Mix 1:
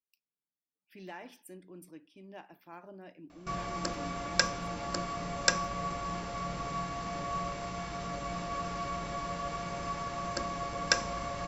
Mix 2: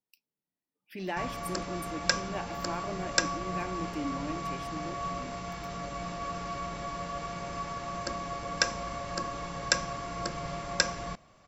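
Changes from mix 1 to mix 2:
speech +10.5 dB
background: entry −2.30 s

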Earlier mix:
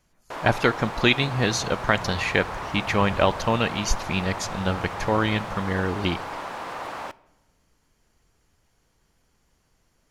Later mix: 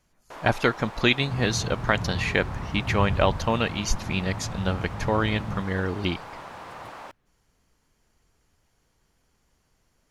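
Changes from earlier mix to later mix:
speech: send off
first sound −7.0 dB
second sound +9.0 dB

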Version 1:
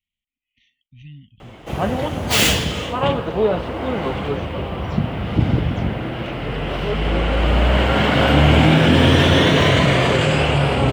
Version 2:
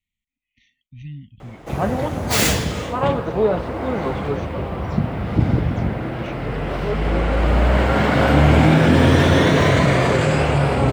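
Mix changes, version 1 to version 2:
speech +5.5 dB
master: add parametric band 3,000 Hz −9.5 dB 0.51 octaves

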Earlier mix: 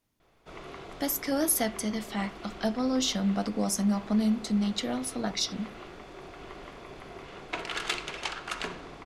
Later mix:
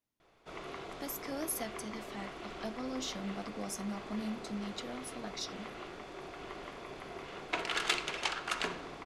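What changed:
speech −11.0 dB
master: add low-shelf EQ 140 Hz −7 dB

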